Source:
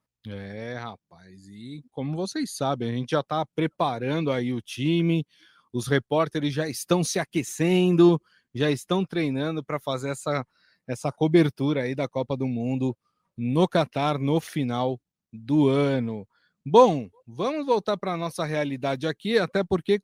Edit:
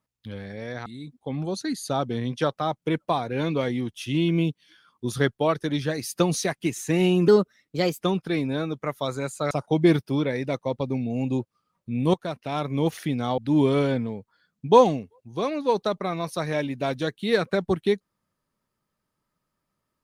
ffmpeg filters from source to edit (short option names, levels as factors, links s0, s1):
-filter_complex "[0:a]asplit=7[s0][s1][s2][s3][s4][s5][s6];[s0]atrim=end=0.862[s7];[s1]atrim=start=1.568:end=7.994[s8];[s2]atrim=start=7.99:end=8.86,asetpts=PTS-STARTPTS,asetrate=53361,aresample=44100,atrim=end_sample=31708,asetpts=PTS-STARTPTS[s9];[s3]atrim=start=8.856:end=10.372[s10];[s4]atrim=start=11.008:end=13.64,asetpts=PTS-STARTPTS,afade=t=out:st=2.628:d=0.004:c=hsin:silence=0.188365[s11];[s5]atrim=start=13.64:end=14.882,asetpts=PTS-STARTPTS,afade=t=in:d=0.74:silence=0.188365[s12];[s6]atrim=start=15.398[s13];[s7][s8]acrossfade=d=0.004:c1=hsin:c2=hsin[s14];[s14][s9]acrossfade=d=0.004:c1=hsin:c2=hsin[s15];[s15][s10]acrossfade=d=0.004:c1=hsin:c2=hsin[s16];[s11][s12]concat=n=2:v=0:a=1[s17];[s16][s17]acrossfade=d=0.004:c1=hsin:c2=hsin[s18];[s18][s13]acrossfade=d=0.004:c1=hsin:c2=hsin"